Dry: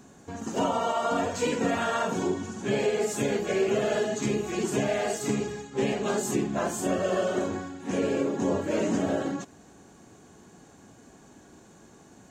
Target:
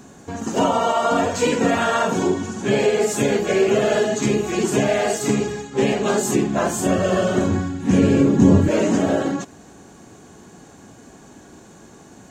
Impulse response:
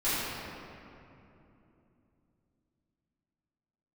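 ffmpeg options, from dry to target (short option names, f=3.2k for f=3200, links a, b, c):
-filter_complex "[0:a]asettb=1/sr,asplit=3[a][b][c];[a]atrim=end=6.574[d];[b]atrim=start=6.57:end=8.69,asetpts=PTS-STARTPTS,afade=t=in:d=0.004:c=qsin,afade=t=out:st=2.116:d=0.004:c=qsin,asubboost=boost=10.5:cutoff=220[e];[c]atrim=start=8.686[f];[d][e]acrossfade=d=0.004:c1=hsin:c2=qsin[g];[g][f]acrossfade=d=0.004:c1=qsin:c2=hsin,volume=8dB"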